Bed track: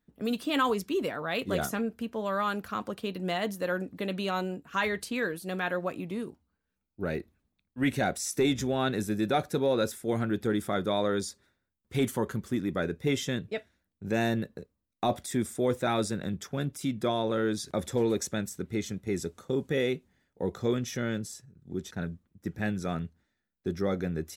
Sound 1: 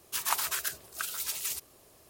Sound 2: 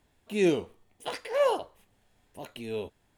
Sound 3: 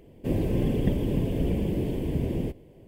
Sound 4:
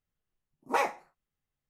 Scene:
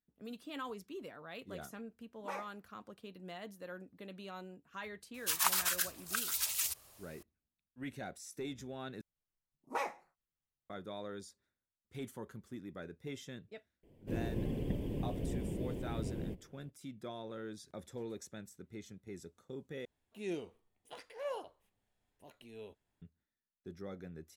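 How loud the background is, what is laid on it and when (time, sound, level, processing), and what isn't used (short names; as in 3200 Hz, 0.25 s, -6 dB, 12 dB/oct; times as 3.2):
bed track -16.5 dB
1.54 add 4 -16 dB
5.14 add 1 -0.5 dB + bell 310 Hz -14.5 dB 1.3 oct
9.01 replace with 4 -9.5 dB
13.83 add 3 -12 dB
19.85 replace with 2 -15.5 dB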